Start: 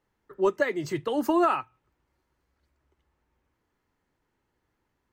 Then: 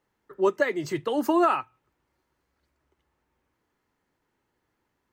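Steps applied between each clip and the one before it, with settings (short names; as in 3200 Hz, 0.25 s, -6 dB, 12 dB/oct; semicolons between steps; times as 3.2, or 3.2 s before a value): low shelf 84 Hz -9 dB; gain +1.5 dB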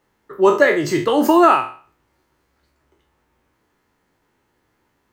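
spectral trails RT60 0.42 s; gain +8.5 dB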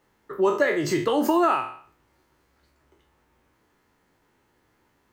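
compressor 2:1, threshold -24 dBFS, peak gain reduction 9.5 dB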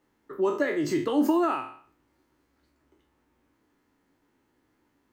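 bell 280 Hz +9.5 dB 0.56 oct; gain -6.5 dB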